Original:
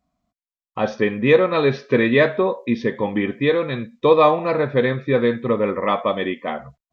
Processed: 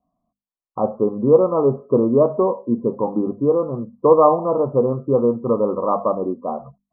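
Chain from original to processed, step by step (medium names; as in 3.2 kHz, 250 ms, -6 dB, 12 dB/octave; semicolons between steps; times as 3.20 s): steep low-pass 1.2 kHz 96 dB/octave; peaking EQ 71 Hz -9 dB 0.87 oct; hum notches 50/100/150/200/250 Hz; trim +1.5 dB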